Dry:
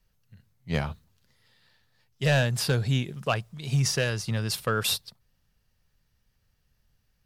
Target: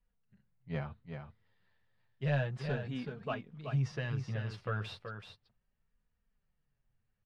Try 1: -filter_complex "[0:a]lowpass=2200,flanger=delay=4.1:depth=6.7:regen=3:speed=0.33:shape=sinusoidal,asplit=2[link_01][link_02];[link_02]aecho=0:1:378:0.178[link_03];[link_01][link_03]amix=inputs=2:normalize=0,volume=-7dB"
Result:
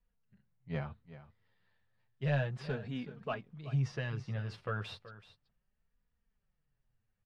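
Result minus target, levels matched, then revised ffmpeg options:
echo-to-direct −8 dB
-filter_complex "[0:a]lowpass=2200,flanger=delay=4.1:depth=6.7:regen=3:speed=0.33:shape=sinusoidal,asplit=2[link_01][link_02];[link_02]aecho=0:1:378:0.447[link_03];[link_01][link_03]amix=inputs=2:normalize=0,volume=-7dB"

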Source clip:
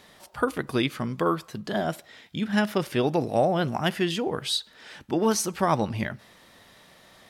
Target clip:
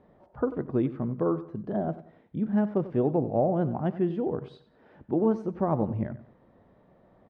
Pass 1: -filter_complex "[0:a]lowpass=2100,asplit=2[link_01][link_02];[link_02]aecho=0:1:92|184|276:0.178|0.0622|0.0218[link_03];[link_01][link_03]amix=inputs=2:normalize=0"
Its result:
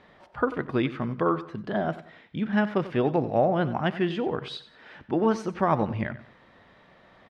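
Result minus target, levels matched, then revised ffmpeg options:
2,000 Hz band +13.5 dB
-filter_complex "[0:a]lowpass=630,asplit=2[link_01][link_02];[link_02]aecho=0:1:92|184|276:0.178|0.0622|0.0218[link_03];[link_01][link_03]amix=inputs=2:normalize=0"

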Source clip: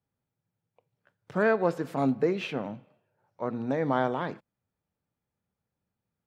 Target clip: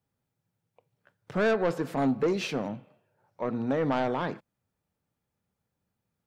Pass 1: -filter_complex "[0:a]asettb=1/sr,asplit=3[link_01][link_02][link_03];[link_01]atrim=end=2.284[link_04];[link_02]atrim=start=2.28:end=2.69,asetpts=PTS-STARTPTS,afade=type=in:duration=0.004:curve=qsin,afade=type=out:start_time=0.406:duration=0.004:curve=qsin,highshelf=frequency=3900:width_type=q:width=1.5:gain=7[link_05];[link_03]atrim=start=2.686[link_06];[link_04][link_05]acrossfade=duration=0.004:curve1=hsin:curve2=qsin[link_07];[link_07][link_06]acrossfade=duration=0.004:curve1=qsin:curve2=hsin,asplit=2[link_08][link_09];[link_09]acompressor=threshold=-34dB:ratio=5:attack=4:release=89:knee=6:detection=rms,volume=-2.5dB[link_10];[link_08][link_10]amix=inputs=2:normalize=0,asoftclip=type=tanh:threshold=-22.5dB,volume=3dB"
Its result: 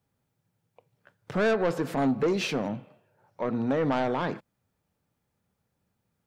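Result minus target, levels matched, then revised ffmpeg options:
downward compressor: peak gain reduction +15 dB
-filter_complex "[0:a]asettb=1/sr,asplit=3[link_01][link_02][link_03];[link_01]atrim=end=2.284[link_04];[link_02]atrim=start=2.28:end=2.69,asetpts=PTS-STARTPTS,afade=type=in:duration=0.004:curve=qsin,afade=type=out:start_time=0.406:duration=0.004:curve=qsin,highshelf=frequency=3900:width_type=q:width=1.5:gain=7[link_05];[link_03]atrim=start=2.686[link_06];[link_04][link_05]acrossfade=duration=0.004:curve1=hsin:curve2=qsin[link_07];[link_07][link_06]acrossfade=duration=0.004:curve1=qsin:curve2=hsin,asoftclip=type=tanh:threshold=-22.5dB,volume=3dB"

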